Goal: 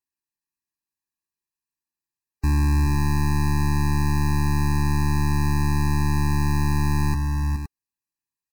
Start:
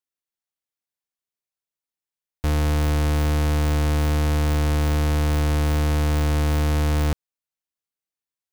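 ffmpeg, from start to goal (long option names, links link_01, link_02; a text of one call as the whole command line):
ffmpeg -i in.wav -af "asetrate=42845,aresample=44100,atempo=1.0293,asuperstop=centerf=3300:order=12:qfactor=3.5,aecho=1:1:290|419|516:0.126|0.422|0.299,afftfilt=real='re*eq(mod(floor(b*sr/1024/390),2),0)':imag='im*eq(mod(floor(b*sr/1024/390),2),0)':win_size=1024:overlap=0.75,volume=1.5dB" out.wav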